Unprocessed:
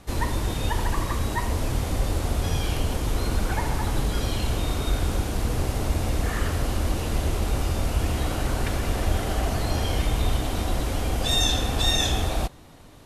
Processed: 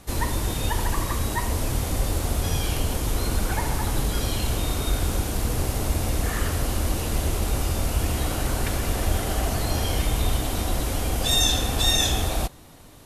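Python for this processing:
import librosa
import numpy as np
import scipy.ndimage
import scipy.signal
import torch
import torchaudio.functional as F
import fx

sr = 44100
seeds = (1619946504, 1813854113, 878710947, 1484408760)

y = fx.high_shelf(x, sr, hz=7500.0, db=10.0)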